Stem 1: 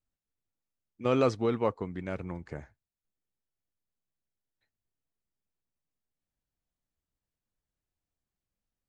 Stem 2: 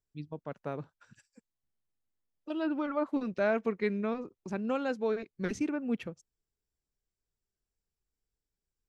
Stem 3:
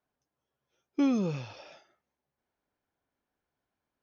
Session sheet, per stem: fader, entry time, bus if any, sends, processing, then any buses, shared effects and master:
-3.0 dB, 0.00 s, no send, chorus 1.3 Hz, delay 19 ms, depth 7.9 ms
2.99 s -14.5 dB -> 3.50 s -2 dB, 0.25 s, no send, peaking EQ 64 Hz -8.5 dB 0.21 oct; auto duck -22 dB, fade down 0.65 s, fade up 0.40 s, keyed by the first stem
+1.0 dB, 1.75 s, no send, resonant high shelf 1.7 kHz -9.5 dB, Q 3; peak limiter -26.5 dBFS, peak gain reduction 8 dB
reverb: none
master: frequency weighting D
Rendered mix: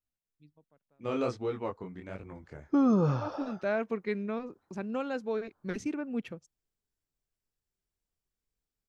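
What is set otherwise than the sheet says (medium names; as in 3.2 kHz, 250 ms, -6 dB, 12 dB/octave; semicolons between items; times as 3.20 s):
stem 3 +1.0 dB -> +8.0 dB; master: missing frequency weighting D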